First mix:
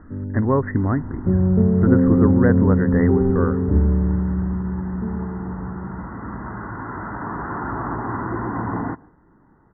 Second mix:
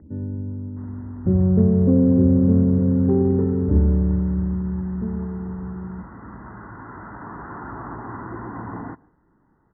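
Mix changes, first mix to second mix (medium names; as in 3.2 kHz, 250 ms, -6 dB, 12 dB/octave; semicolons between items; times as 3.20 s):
speech: muted; second sound -7.5 dB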